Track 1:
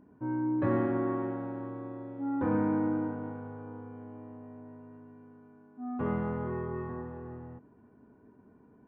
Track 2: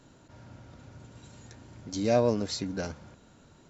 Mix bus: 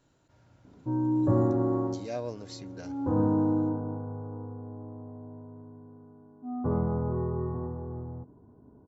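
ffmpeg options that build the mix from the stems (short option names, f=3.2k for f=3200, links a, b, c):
-filter_complex "[0:a]lowpass=f=1.1k:w=0.5412,lowpass=f=1.1k:w=1.3066,lowshelf=f=180:g=9,adelay=650,volume=2dB[a];[1:a]volume=-10.5dB,asplit=2[b][c];[c]apad=whole_len=419963[d];[a][d]sidechaincompress=threshold=-47dB:ratio=8:attack=11:release=439[e];[e][b]amix=inputs=2:normalize=0,equalizer=f=220:t=o:w=0.31:g=-6.5"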